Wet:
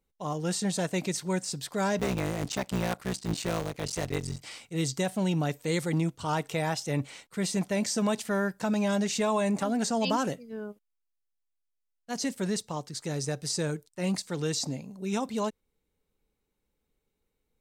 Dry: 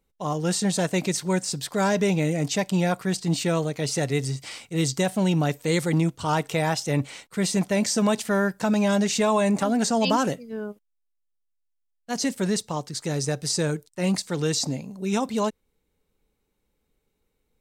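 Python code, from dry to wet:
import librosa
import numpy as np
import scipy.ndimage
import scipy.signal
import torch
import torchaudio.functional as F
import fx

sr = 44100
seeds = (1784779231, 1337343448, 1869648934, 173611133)

y = fx.cycle_switch(x, sr, every=3, mode='muted', at=(1.98, 4.42), fade=0.02)
y = y * librosa.db_to_amplitude(-5.5)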